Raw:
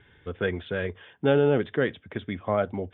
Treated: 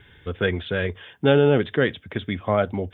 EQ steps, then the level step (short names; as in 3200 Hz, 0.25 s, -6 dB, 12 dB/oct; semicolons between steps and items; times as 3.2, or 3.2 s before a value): low shelf 140 Hz +5.5 dB; high shelf 3300 Hz +11 dB; +3.0 dB